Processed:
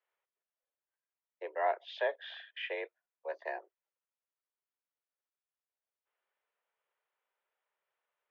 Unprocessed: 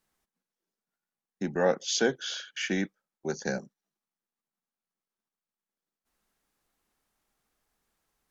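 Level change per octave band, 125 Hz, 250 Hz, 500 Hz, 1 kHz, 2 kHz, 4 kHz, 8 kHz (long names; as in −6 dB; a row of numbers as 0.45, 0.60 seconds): below −40 dB, −25.5 dB, −7.0 dB, +0.5 dB, −6.0 dB, −12.0 dB, can't be measured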